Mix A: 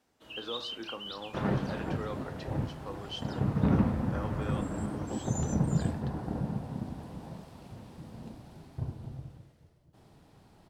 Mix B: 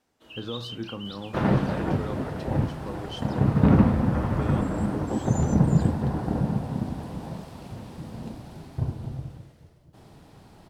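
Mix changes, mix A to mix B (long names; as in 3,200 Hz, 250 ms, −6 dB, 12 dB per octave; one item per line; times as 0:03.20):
speech: remove band-pass filter 470–7,000 Hz
second sound +8.0 dB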